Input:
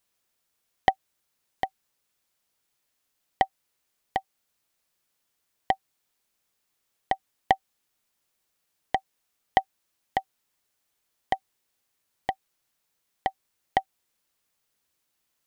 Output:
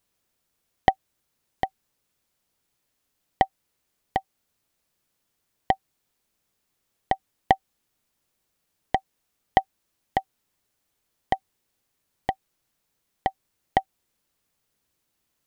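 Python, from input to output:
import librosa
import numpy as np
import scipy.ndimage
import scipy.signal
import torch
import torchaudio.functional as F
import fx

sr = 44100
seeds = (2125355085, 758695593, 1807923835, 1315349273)

y = fx.low_shelf(x, sr, hz=470.0, db=8.0)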